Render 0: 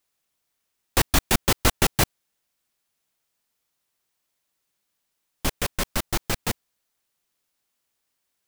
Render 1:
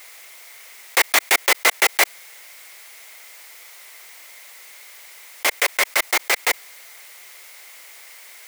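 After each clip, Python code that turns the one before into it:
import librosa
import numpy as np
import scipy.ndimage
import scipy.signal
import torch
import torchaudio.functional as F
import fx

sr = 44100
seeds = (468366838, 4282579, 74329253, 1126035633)

y = scipy.signal.sosfilt(scipy.signal.butter(4, 450.0, 'highpass', fs=sr, output='sos'), x)
y = fx.peak_eq(y, sr, hz=2100.0, db=13.0, octaves=0.29)
y = fx.env_flatten(y, sr, amount_pct=50)
y = y * 10.0 ** (3.0 / 20.0)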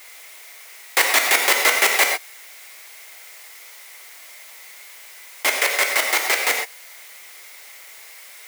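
y = fx.rev_gated(x, sr, seeds[0], gate_ms=150, shape='flat', drr_db=2.0)
y = y * 10.0 ** (-1.0 / 20.0)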